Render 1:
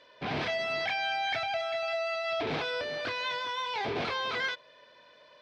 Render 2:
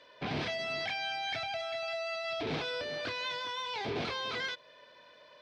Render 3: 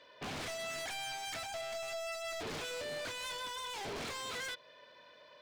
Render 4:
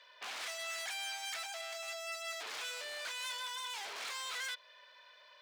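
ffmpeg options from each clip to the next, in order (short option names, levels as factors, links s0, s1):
-filter_complex "[0:a]acrossover=split=410|3000[s0][s1][s2];[s1]acompressor=threshold=0.01:ratio=2.5[s3];[s0][s3][s2]amix=inputs=3:normalize=0"
-af "aeval=exprs='0.0188*(abs(mod(val(0)/0.0188+3,4)-2)-1)':c=same,volume=0.841"
-af "highpass=1000,volume=1.19"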